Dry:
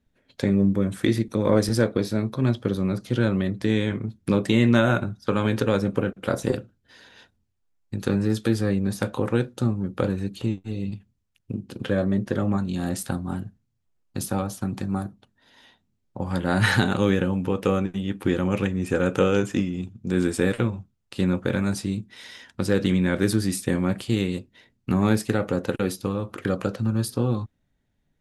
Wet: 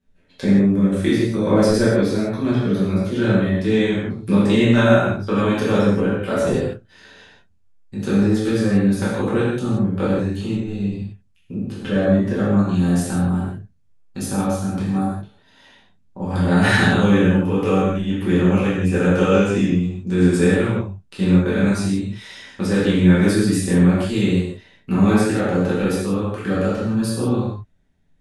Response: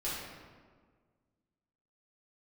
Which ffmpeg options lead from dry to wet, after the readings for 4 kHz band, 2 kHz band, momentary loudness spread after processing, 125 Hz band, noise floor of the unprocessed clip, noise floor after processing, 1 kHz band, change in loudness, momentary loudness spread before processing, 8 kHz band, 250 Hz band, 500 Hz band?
+4.0 dB, +5.5 dB, 11 LU, +5.5 dB, -73 dBFS, -56 dBFS, +5.5 dB, +6.0 dB, 10 LU, +3.5 dB, +6.5 dB, +5.5 dB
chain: -filter_complex "[1:a]atrim=start_sample=2205,atrim=end_sample=4410,asetrate=22932,aresample=44100[a];[0:a][a]afir=irnorm=-1:irlink=0,volume=-2.5dB"

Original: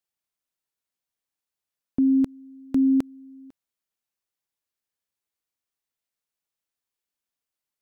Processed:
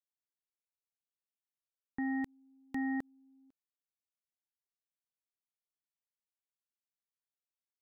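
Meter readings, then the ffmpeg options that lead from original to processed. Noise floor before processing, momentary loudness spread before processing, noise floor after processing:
under -85 dBFS, 11 LU, under -85 dBFS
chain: -af "aeval=exprs='0.178*(cos(1*acos(clip(val(0)/0.178,-1,1)))-cos(1*PI/2))+0.00112*(cos(2*acos(clip(val(0)/0.178,-1,1)))-cos(2*PI/2))+0.0355*(cos(5*acos(clip(val(0)/0.178,-1,1)))-cos(5*PI/2))+0.0562*(cos(7*acos(clip(val(0)/0.178,-1,1)))-cos(7*PI/2))':c=same,alimiter=level_in=1dB:limit=-24dB:level=0:latency=1,volume=-1dB,volume=-5dB"

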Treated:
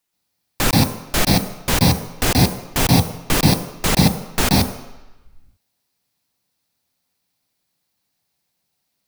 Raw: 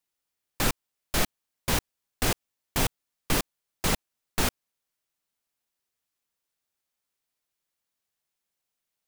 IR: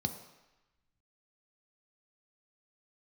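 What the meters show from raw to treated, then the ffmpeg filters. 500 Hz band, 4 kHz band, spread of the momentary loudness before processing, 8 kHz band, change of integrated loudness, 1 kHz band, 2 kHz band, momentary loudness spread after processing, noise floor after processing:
+11.0 dB, +11.5 dB, 6 LU, +9.5 dB, +11.5 dB, +11.0 dB, +9.0 dB, 5 LU, -74 dBFS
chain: -filter_complex "[0:a]asplit=2[a][b];[1:a]atrim=start_sample=2205,highshelf=f=8.7k:g=5.5,adelay=129[c];[b][c]afir=irnorm=-1:irlink=0,volume=-3dB[d];[a][d]amix=inputs=2:normalize=0,volume=7dB"

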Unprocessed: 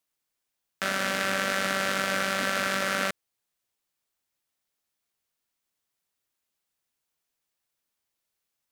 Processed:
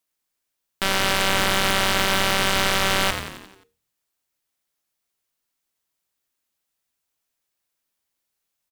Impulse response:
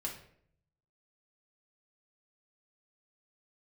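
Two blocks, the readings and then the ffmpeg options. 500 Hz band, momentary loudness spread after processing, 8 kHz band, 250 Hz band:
+5.0 dB, 6 LU, +8.5 dB, +5.5 dB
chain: -filter_complex "[0:a]aeval=exprs='0.376*(cos(1*acos(clip(val(0)/0.376,-1,1)))-cos(1*PI/2))+0.15*(cos(6*acos(clip(val(0)/0.376,-1,1)))-cos(6*PI/2))':c=same,asplit=7[a][b][c][d][e][f][g];[b]adelay=88,afreqshift=-78,volume=-8dB[h];[c]adelay=176,afreqshift=-156,volume=-13.4dB[i];[d]adelay=264,afreqshift=-234,volume=-18.7dB[j];[e]adelay=352,afreqshift=-312,volume=-24.1dB[k];[f]adelay=440,afreqshift=-390,volume=-29.4dB[l];[g]adelay=528,afreqshift=-468,volume=-34.8dB[m];[a][h][i][j][k][l][m]amix=inputs=7:normalize=0,asplit=2[n][o];[1:a]atrim=start_sample=2205,asetrate=61740,aresample=44100,highshelf=f=4.4k:g=12[p];[o][p]afir=irnorm=-1:irlink=0,volume=-14dB[q];[n][q]amix=inputs=2:normalize=0"

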